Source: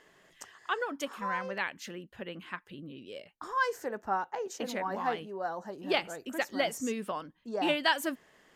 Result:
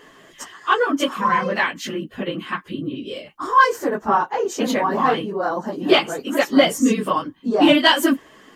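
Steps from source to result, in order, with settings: phase scrambler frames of 50 ms; in parallel at -6 dB: soft clip -23 dBFS, distortion -14 dB; on the sum: small resonant body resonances 270/1100/3100 Hz, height 7 dB, ringing for 20 ms; gain +8.5 dB

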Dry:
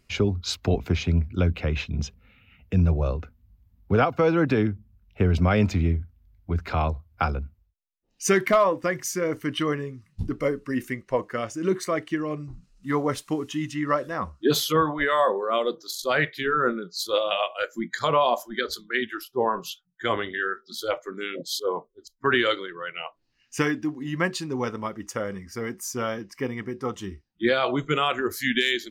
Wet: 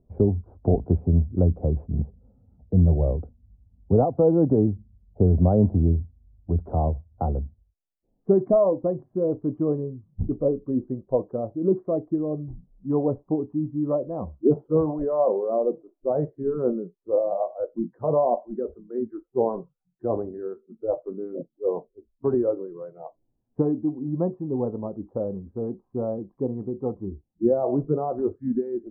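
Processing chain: steep low-pass 770 Hz 36 dB/oct; gain +2.5 dB

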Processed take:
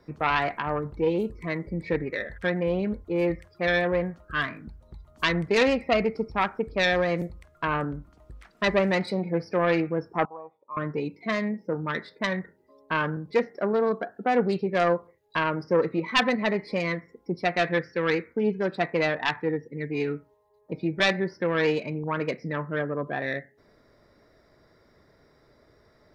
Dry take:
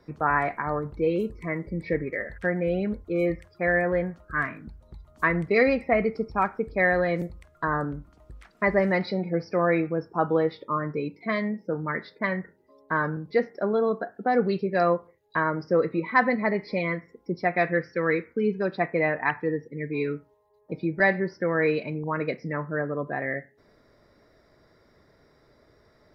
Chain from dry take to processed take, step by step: self-modulated delay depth 0.22 ms; 10.25–10.77 vocal tract filter a

